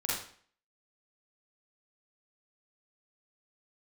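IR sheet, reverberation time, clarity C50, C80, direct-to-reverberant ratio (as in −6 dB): 0.50 s, −0.5 dB, 5.5 dB, −7.0 dB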